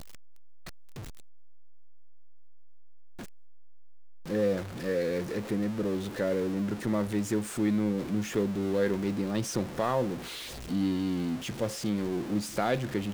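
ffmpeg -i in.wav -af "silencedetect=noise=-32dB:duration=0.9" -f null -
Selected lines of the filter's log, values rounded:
silence_start: 0.00
silence_end: 4.30 | silence_duration: 4.30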